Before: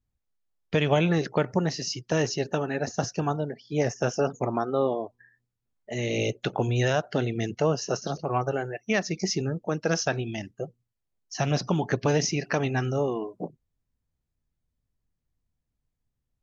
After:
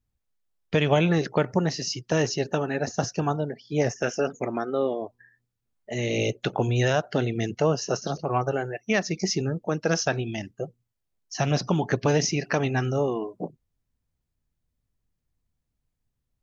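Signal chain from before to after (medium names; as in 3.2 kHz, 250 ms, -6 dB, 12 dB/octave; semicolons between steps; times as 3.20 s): 3.96–5.02 s: graphic EQ 125/1000/2000/4000 Hz -8/-9/+10/-4 dB; trim +1.5 dB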